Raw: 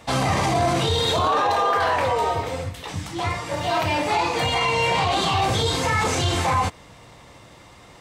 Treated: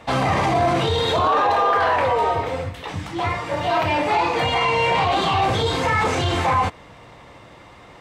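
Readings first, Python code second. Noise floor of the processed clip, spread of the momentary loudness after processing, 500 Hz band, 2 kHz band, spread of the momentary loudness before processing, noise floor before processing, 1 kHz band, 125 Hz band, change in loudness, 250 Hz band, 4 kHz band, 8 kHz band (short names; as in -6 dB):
-45 dBFS, 8 LU, +2.5 dB, +2.0 dB, 8 LU, -47 dBFS, +2.5 dB, 0.0 dB, +1.5 dB, +1.5 dB, -1.0 dB, -6.5 dB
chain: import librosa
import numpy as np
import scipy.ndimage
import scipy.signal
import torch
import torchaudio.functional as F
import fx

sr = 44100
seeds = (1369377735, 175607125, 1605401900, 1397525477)

p1 = fx.bass_treble(x, sr, bass_db=-3, treble_db=-11)
p2 = 10.0 ** (-20.0 / 20.0) * np.tanh(p1 / 10.0 ** (-20.0 / 20.0))
y = p1 + F.gain(torch.from_numpy(p2), -5.5).numpy()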